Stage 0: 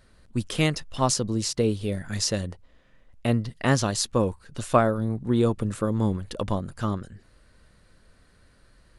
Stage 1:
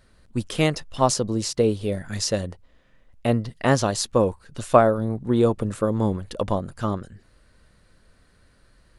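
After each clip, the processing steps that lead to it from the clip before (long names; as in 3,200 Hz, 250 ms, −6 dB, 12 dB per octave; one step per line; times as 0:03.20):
dynamic equaliser 620 Hz, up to +6 dB, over −37 dBFS, Q 0.82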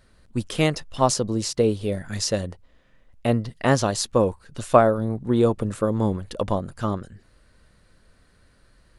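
no processing that can be heard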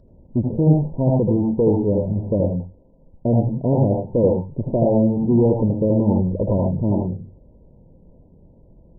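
tube saturation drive 23 dB, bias 0.25
linear-phase brick-wall low-pass 1,000 Hz
convolution reverb RT60 0.20 s, pre-delay 75 ms, DRR 2 dB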